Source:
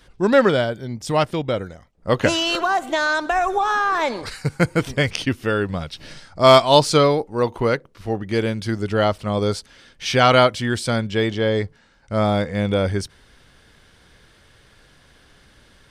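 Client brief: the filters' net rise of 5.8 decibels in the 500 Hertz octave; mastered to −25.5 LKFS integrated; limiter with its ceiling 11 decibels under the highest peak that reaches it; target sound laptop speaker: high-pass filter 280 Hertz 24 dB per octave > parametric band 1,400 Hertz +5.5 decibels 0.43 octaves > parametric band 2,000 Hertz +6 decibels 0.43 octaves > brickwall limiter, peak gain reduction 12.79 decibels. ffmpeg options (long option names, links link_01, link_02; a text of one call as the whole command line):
ffmpeg -i in.wav -af "equalizer=frequency=500:width_type=o:gain=7,alimiter=limit=-8.5dB:level=0:latency=1,highpass=frequency=280:width=0.5412,highpass=frequency=280:width=1.3066,equalizer=frequency=1400:width_type=o:width=0.43:gain=5.5,equalizer=frequency=2000:width_type=o:width=0.43:gain=6,volume=1dB,alimiter=limit=-16dB:level=0:latency=1" out.wav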